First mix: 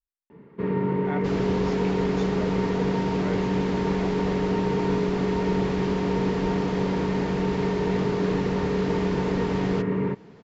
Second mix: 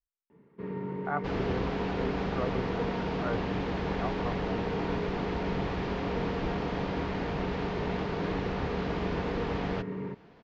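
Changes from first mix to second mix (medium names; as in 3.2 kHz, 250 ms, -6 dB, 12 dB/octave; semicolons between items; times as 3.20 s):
speech: add resonant low-pass 1.2 kHz, resonance Q 2.5; first sound -11.0 dB; second sound: add Gaussian low-pass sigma 1.8 samples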